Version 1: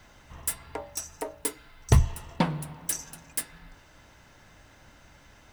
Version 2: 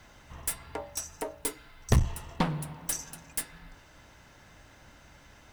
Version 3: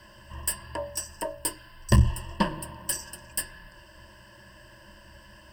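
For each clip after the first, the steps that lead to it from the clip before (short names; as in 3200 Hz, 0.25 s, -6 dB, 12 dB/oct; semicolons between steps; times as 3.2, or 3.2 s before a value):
one-sided clip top -29 dBFS
ripple EQ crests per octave 1.3, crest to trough 18 dB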